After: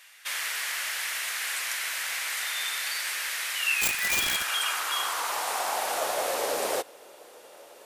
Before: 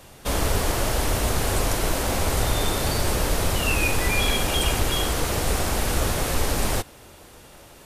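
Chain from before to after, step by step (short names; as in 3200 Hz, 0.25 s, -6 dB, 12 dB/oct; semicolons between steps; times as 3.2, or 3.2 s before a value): high-pass sweep 1900 Hz -> 500 Hz, 3.95–6.64; 3.81–4.49 wrapped overs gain 15.5 dB; gain -4 dB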